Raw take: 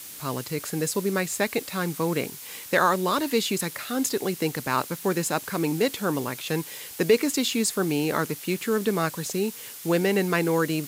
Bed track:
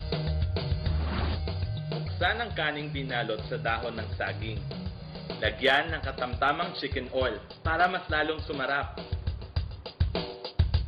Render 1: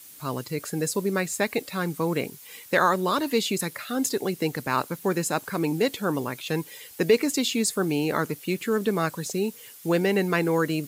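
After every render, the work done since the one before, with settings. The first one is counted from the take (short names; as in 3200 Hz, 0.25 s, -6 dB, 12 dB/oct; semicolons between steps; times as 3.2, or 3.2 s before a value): denoiser 9 dB, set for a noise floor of -41 dBFS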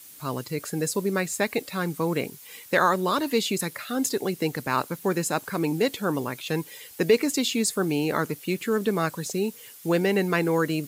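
nothing audible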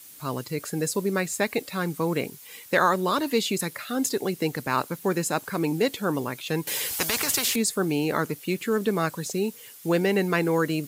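6.67–7.56 spectral compressor 4:1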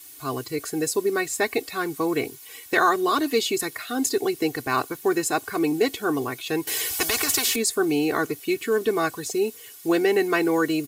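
comb 2.7 ms, depth 80%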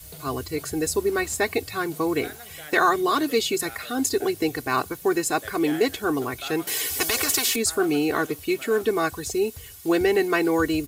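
add bed track -14 dB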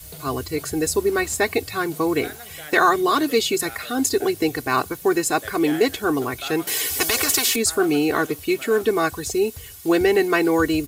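gain +3 dB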